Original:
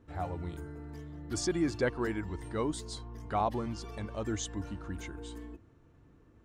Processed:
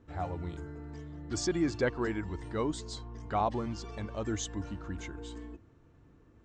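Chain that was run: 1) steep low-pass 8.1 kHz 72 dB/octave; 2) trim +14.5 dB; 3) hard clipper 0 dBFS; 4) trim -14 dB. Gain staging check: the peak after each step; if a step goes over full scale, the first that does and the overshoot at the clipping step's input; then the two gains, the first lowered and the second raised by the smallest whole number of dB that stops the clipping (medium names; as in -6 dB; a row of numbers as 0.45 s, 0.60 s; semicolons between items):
-17.5 dBFS, -3.0 dBFS, -3.0 dBFS, -17.0 dBFS; nothing clips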